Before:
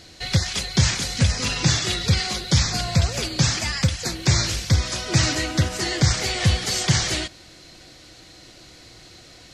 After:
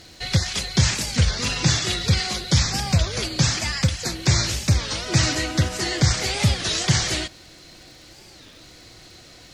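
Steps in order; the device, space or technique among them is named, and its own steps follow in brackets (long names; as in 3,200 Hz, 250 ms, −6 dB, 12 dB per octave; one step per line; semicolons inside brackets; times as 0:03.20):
warped LP (wow of a warped record 33 1/3 rpm, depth 250 cents; surface crackle 77 per second −41 dBFS; pink noise bed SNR 40 dB)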